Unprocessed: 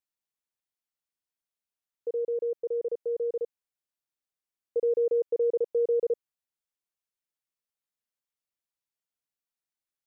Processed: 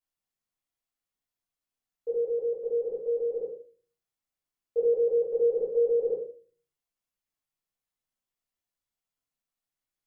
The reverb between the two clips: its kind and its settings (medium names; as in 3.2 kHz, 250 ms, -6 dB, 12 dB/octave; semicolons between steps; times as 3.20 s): simulated room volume 290 m³, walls furnished, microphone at 5.6 m; trim -8 dB